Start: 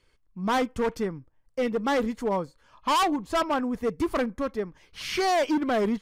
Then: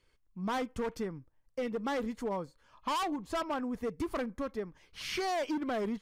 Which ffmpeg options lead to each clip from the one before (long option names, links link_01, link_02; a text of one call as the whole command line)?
ffmpeg -i in.wav -af "acompressor=threshold=-26dB:ratio=6,volume=-5dB" out.wav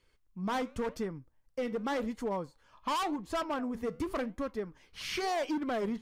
ffmpeg -i in.wav -af "flanger=delay=4.2:depth=7.3:regen=-85:speed=0.9:shape=sinusoidal,volume=5dB" out.wav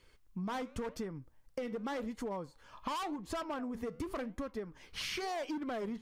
ffmpeg -i in.wav -af "acompressor=threshold=-43dB:ratio=6,volume=6dB" out.wav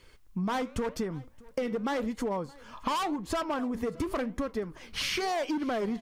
ffmpeg -i in.wav -af "aecho=1:1:621:0.0668,volume=7.5dB" out.wav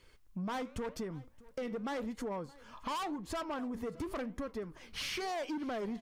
ffmpeg -i in.wav -af "asoftclip=type=tanh:threshold=-25.5dB,volume=-5.5dB" out.wav